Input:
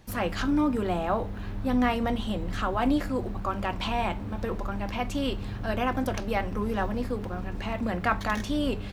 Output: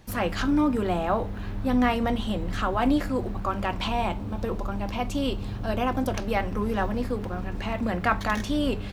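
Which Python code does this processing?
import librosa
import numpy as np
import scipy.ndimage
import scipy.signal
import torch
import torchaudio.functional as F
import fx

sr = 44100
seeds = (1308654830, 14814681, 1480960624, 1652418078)

y = fx.peak_eq(x, sr, hz=1800.0, db=-5.5, octaves=0.84, at=(3.88, 6.16))
y = y * librosa.db_to_amplitude(2.0)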